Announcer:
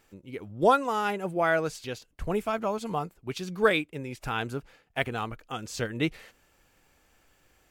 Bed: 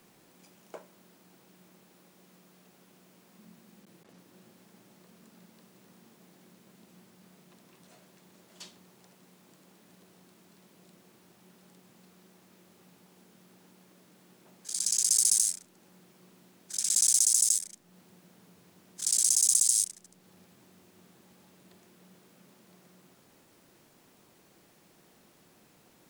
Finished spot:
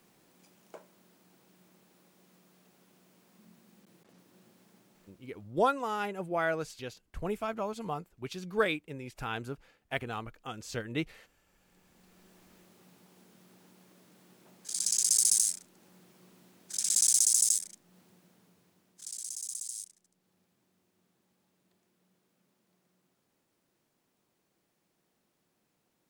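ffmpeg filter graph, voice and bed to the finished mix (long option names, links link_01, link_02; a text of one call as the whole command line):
ffmpeg -i stem1.wav -i stem2.wav -filter_complex "[0:a]adelay=4950,volume=-5.5dB[link_01];[1:a]volume=18dB,afade=type=out:start_time=4.72:duration=0.92:silence=0.112202,afade=type=in:start_time=11.48:duration=0.9:silence=0.0794328,afade=type=out:start_time=17.44:duration=1.72:silence=0.188365[link_02];[link_01][link_02]amix=inputs=2:normalize=0" out.wav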